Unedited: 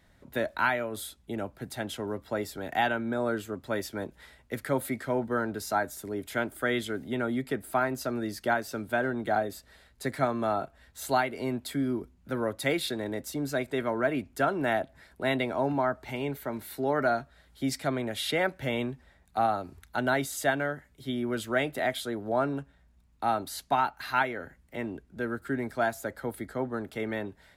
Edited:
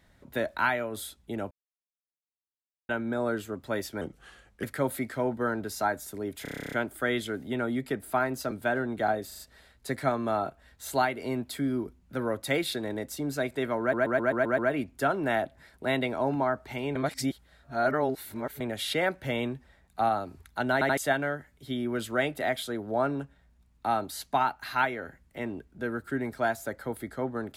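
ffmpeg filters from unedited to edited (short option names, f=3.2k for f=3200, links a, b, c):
-filter_complex "[0:a]asplit=30[a][b][c][d][e][f][g][h][i][j][k][l][m][n][o][p][q][r][s][t][u][v][w][x][y][z][aa][ab][ac][ad];[a]atrim=end=1.51,asetpts=PTS-STARTPTS,afade=t=out:st=1.506:d=0.004:c=hsin[ae];[b]atrim=start=1.51:end=2.89,asetpts=PTS-STARTPTS,volume=0[af];[c]atrim=start=2.89:end=4.014,asetpts=PTS-STARTPTS,afade=t=in:d=0.004:c=hsin[ag];[d]atrim=start=4.01:end=4.54,asetpts=PTS-STARTPTS,asetrate=37485,aresample=44100[ah];[e]atrim=start=4.536:end=6.362[ai];[f]atrim=start=6.328:end=6.362[aj];[g]atrim=start=6.328:end=6.362[ak];[h]atrim=start=6.328:end=6.362[al];[i]atrim=start=6.328:end=6.362[am];[j]atrim=start=6.328:end=6.362[an];[k]atrim=start=6.328:end=6.362[ao];[l]atrim=start=6.328:end=6.362[ap];[m]atrim=start=6.328:end=6.362[aq];[n]atrim=start=6.328:end=6.362[ar];[o]atrim=start=6.328:end=8.122[as];[p]atrim=start=8.788:end=9.592[at];[q]atrim=start=9.548:end=9.592[au];[r]atrim=start=9.548:end=9.592[av];[s]atrim=start=9.548:end=14.092[aw];[t]atrim=start=13.958:end=14.092[ax];[u]atrim=start=13.958:end=14.092[ay];[v]atrim=start=13.958:end=14.092[az];[w]atrim=start=13.958:end=14.092[ba];[x]atrim=start=13.958:end=14.092[bb];[y]atrim=start=13.958:end=16.332[bc];[z]atrim=start=16.328:end=17.982,asetpts=PTS-STARTPTS,areverse[bd];[aa]atrim=start=17.978:end=20.192[be];[ab]atrim=start=20.108:end=20.192[bf];[ac]atrim=start=20.108:end=20.192[bg];[ad]atrim=start=20.348[bh];[ae][af][ag]concat=n=3:v=0:a=1[bi];[bi][ah]acrossfade=d=0.004:c1=hsin:c2=hsin[bj];[bj][ai]acrossfade=d=0.004:c1=hsin:c2=hsin[bk];[bk][aj]acrossfade=d=0.004:c1=hsin:c2=hsin[bl];[bl][ak]acrossfade=d=0.004:c1=hsin:c2=hsin[bm];[bm][al]acrossfade=d=0.004:c1=hsin:c2=hsin[bn];[bn][am]acrossfade=d=0.004:c1=hsin:c2=hsin[bo];[bo][an]acrossfade=d=0.004:c1=hsin:c2=hsin[bp];[bp][ao]acrossfade=d=0.004:c1=hsin:c2=hsin[bq];[bq][ap]acrossfade=d=0.004:c1=hsin:c2=hsin[br];[br][aq]acrossfade=d=0.004:c1=hsin:c2=hsin[bs];[bs][ar]acrossfade=d=0.004:c1=hsin:c2=hsin[bt];[bt][as]acrossfade=d=0.004:c1=hsin:c2=hsin[bu];[bu][at]acrossfade=d=0.004:c1=hsin:c2=hsin[bv];[bv][au]acrossfade=d=0.004:c1=hsin:c2=hsin[bw];[bw][av]acrossfade=d=0.004:c1=hsin:c2=hsin[bx];[bx][aw]acrossfade=d=0.004:c1=hsin:c2=hsin[by];[by][ax]acrossfade=d=0.004:c1=hsin:c2=hsin[bz];[bz][ay]acrossfade=d=0.004:c1=hsin:c2=hsin[ca];[ca][az]acrossfade=d=0.004:c1=hsin:c2=hsin[cb];[cb][ba]acrossfade=d=0.004:c1=hsin:c2=hsin[cc];[cc][bb]acrossfade=d=0.004:c1=hsin:c2=hsin[cd];[cd][bc]acrossfade=d=0.004:c1=hsin:c2=hsin[ce];[ce][bd]acrossfade=d=0.004:c1=hsin:c2=hsin[cf];[cf][be]acrossfade=d=0.004:c1=hsin:c2=hsin[cg];[cg][bf]acrossfade=d=0.004:c1=hsin:c2=hsin[ch];[ch][bg]acrossfade=d=0.004:c1=hsin:c2=hsin[ci];[ci][bh]acrossfade=d=0.004:c1=hsin:c2=hsin"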